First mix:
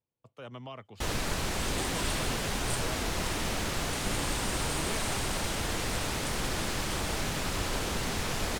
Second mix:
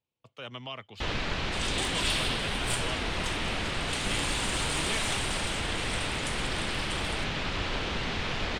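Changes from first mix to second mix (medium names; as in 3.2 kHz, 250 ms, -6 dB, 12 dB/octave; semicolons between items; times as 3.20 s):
first sound: add tape spacing loss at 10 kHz 23 dB; master: add peaking EQ 3.2 kHz +11.5 dB 1.9 oct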